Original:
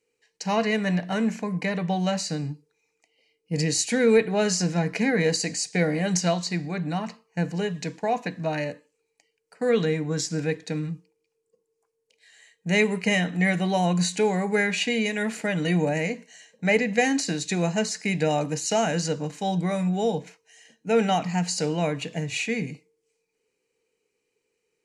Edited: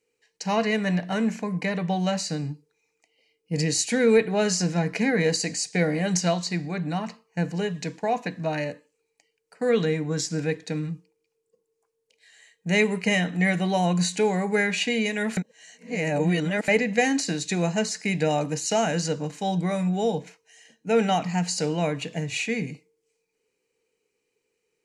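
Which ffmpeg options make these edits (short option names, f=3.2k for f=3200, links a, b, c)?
-filter_complex "[0:a]asplit=3[a][b][c];[a]atrim=end=15.372[d];[b]atrim=start=15.368:end=16.682,asetpts=PTS-STARTPTS,areverse[e];[c]atrim=start=16.678[f];[d][e]acrossfade=d=0.004:c1=hsin:c2=hsin[g];[g][f]acrossfade=d=0.004:c1=hsin:c2=hsin"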